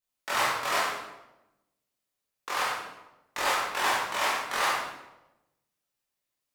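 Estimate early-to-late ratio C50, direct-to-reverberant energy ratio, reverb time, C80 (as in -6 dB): 0.0 dB, -7.5 dB, 0.95 s, 3.5 dB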